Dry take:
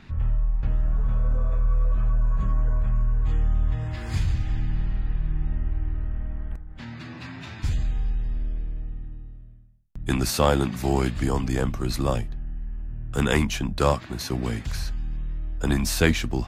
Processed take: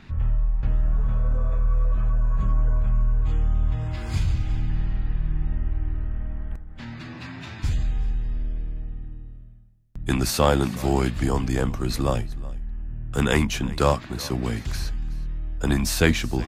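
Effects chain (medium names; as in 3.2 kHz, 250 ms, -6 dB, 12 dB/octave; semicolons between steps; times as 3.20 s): 2.42–4.70 s: band-stop 1.8 kHz, Q 8.4; delay 371 ms -20.5 dB; trim +1 dB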